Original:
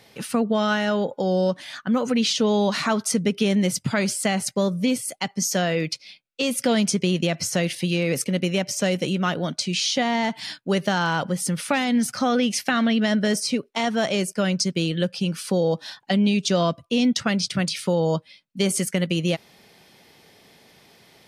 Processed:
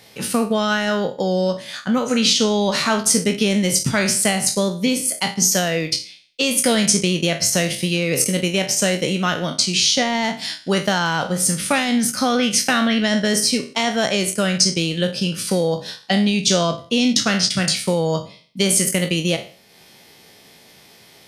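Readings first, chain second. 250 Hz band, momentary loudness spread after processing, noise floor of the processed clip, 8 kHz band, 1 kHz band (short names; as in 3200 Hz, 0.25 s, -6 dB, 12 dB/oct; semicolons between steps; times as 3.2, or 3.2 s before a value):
+2.0 dB, 6 LU, -49 dBFS, +9.5 dB, +3.0 dB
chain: spectral trails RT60 0.46 s; high shelf 3500 Hz +6.5 dB; transient shaper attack +1 dB, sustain -5 dB; gain +1.5 dB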